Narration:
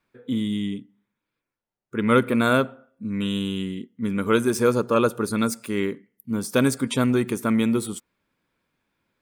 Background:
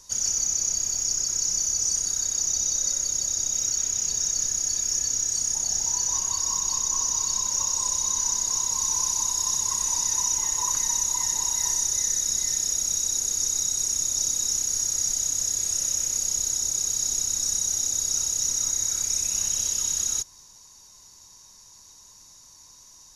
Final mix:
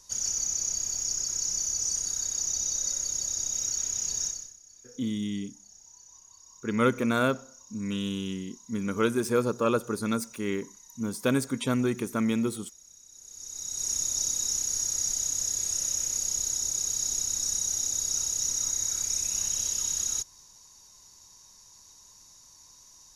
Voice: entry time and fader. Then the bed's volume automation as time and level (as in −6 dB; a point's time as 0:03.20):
4.70 s, −5.5 dB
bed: 0:04.26 −4.5 dB
0:04.59 −27.5 dB
0:13.07 −27.5 dB
0:13.90 −3.5 dB